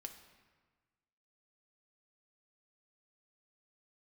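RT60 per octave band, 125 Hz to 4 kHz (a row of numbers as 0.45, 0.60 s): 1.7, 1.5, 1.4, 1.4, 1.3, 1.0 s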